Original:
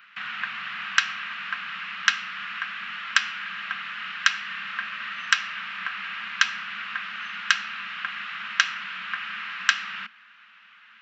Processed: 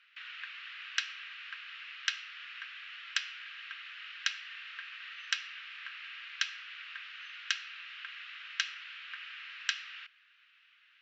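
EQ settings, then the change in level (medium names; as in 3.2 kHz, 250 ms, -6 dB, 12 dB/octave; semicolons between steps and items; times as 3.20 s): high-pass 1.4 kHz 12 dB/octave; low-pass 4.2 kHz 12 dB/octave; differentiator; 0.0 dB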